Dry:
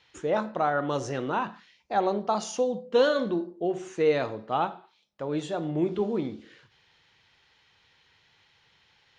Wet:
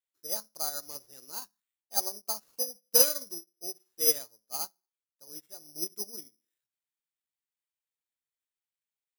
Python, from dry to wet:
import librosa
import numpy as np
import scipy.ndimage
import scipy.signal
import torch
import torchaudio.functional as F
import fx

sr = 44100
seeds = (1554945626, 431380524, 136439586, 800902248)

y = fx.low_shelf(x, sr, hz=120.0, db=-9.5)
y = (np.kron(y[::8], np.eye(8)[0]) * 8)[:len(y)]
y = fx.upward_expand(y, sr, threshold_db=-32.0, expansion=2.5)
y = y * 10.0 ** (-7.5 / 20.0)